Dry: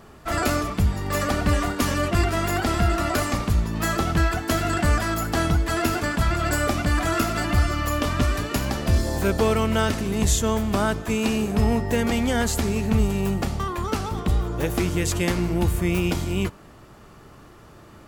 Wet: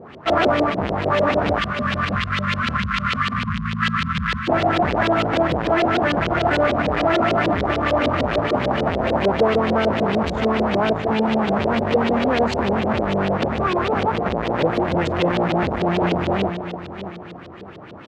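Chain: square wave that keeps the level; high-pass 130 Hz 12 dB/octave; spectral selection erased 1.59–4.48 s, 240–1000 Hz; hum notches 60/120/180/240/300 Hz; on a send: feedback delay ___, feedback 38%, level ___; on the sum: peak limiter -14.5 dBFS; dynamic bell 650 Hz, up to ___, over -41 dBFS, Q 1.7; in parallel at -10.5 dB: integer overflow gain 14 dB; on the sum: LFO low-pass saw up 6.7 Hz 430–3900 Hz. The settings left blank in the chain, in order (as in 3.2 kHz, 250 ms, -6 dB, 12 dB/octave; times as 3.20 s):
618 ms, -15 dB, +5 dB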